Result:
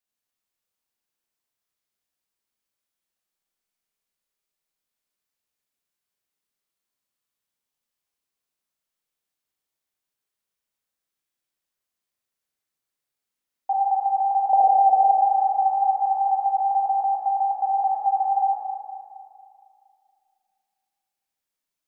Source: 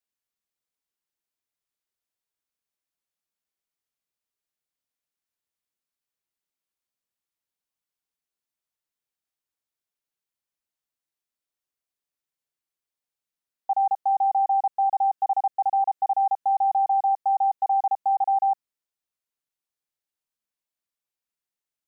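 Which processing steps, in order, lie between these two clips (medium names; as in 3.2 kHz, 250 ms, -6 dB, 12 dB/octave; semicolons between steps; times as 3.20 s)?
14.53–15.16 s: resonant low shelf 790 Hz +10 dB, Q 3; Schroeder reverb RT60 2.4 s, combs from 30 ms, DRR -2.5 dB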